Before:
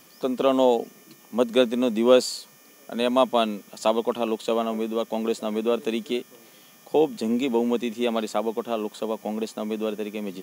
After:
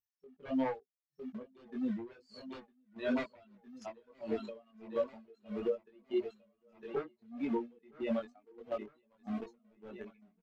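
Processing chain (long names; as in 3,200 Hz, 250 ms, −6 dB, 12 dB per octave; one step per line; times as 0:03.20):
spectral dynamics exaggerated over time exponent 3
in parallel at −7.5 dB: bit reduction 7 bits
on the sum: wave folding −20 dBFS
brickwall limiter −30.5 dBFS, peak gain reduction 10.5 dB
low-pass filter 2,700 Hz 12 dB per octave
repeating echo 957 ms, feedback 51%, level −13.5 dB
downward compressor 3 to 1, threshold −37 dBFS, peak gain reduction 4 dB
dynamic equaliser 380 Hz, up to +6 dB, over −50 dBFS, Q 1.3
multi-voice chorus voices 6, 0.3 Hz, delay 21 ms, depth 1.8 ms
tremolo with a sine in dB 1.6 Hz, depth 30 dB
level +9 dB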